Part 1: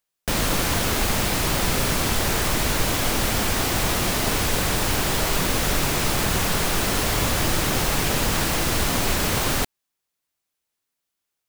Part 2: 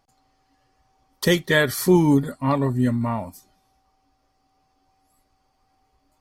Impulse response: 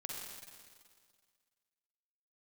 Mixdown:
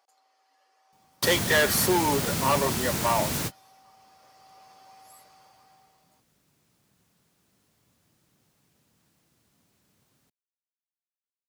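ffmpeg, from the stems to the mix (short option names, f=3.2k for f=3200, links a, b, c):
-filter_complex "[0:a]bass=f=250:g=13,treble=f=4k:g=5,adelay=650,volume=-9.5dB[a];[1:a]dynaudnorm=f=220:g=9:m=16dB,highpass=f=470:w=0.5412,highpass=f=470:w=1.3066,asoftclip=type=tanh:threshold=-16.5dB,volume=-1dB,asplit=2[b][c];[c]apad=whole_len=535271[d];[a][d]sidechaingate=range=-40dB:threshold=-46dB:ratio=16:detection=peak[e];[e][b]amix=inputs=2:normalize=0,highpass=160"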